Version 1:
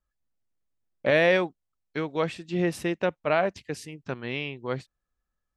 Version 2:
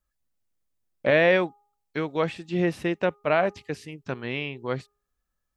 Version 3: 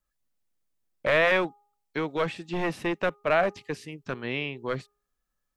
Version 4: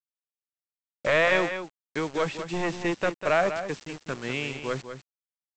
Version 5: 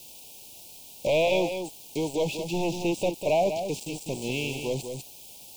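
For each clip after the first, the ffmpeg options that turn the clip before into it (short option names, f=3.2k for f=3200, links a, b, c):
-filter_complex "[0:a]highshelf=f=6.5k:g=5.5,bandreject=f=410.3:t=h:w=4,bandreject=f=820.6:t=h:w=4,bandreject=f=1.2309k:t=h:w=4,acrossover=split=3800[a][b];[b]acompressor=threshold=-52dB:ratio=4:attack=1:release=60[c];[a][c]amix=inputs=2:normalize=0,volume=1.5dB"
-filter_complex "[0:a]equalizer=f=70:t=o:w=0.76:g=-11.5,acrossover=split=640[a][b];[a]aeval=exprs='0.0631*(abs(mod(val(0)/0.0631+3,4)-2)-1)':c=same[c];[c][b]amix=inputs=2:normalize=0"
-af "aresample=16000,acrusher=bits=6:mix=0:aa=0.000001,aresample=44100,aecho=1:1:198:0.335"
-af "aeval=exprs='val(0)+0.5*0.0188*sgn(val(0))':c=same,asuperstop=centerf=1500:order=12:qfactor=1"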